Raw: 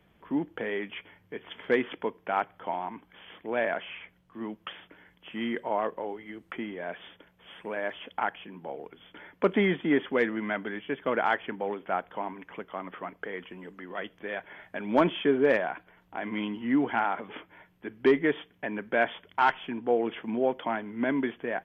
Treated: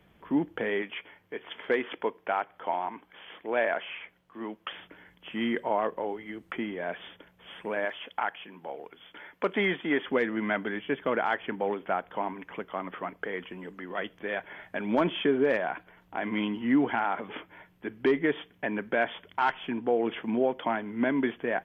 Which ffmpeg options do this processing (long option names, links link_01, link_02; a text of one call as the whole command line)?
ffmpeg -i in.wav -filter_complex "[0:a]asettb=1/sr,asplit=3[link_01][link_02][link_03];[link_01]atrim=end=0.824[link_04];[link_02]atrim=start=0.82:end=4.73,asetpts=PTS-STARTPTS,afade=type=in:duration=0.004:curve=qsin,afade=type=out:start_time=3.906:duration=0.004:curve=qsin,bass=frequency=250:gain=-10,treble=frequency=4000:gain=-3[link_05];[link_03]atrim=start=4.726[link_06];[link_04][link_05]acrossfade=duration=0.004:curve1=hsin:curve2=qsin[link_07];[link_07][link_06]acrossfade=duration=0.004:curve1=qsin:curve2=hsin,asettb=1/sr,asplit=3[link_08][link_09][link_10];[link_08]atrim=end=7.854[link_11];[link_09]atrim=start=7.85:end=10.07,asetpts=PTS-STARTPTS,afade=type=in:duration=0.004:curve=qsin,afade=type=out:start_time=2.216:duration=0.004:curve=qsin,lowshelf=frequency=370:gain=-10.5[link_12];[link_10]atrim=start=10.066[link_13];[link_11][link_12]acrossfade=duration=0.004:curve1=hsin:curve2=qsin[link_14];[link_14][link_13]acrossfade=duration=0.004:curve1=qsin:curve2=hsin,alimiter=limit=-18dB:level=0:latency=1:release=194,volume=2.5dB" out.wav